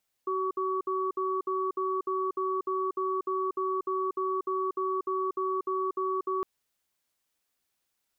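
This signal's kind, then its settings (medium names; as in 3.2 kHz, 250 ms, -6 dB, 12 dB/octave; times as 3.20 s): cadence 378 Hz, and 1.13 kHz, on 0.24 s, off 0.06 s, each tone -29.5 dBFS 6.16 s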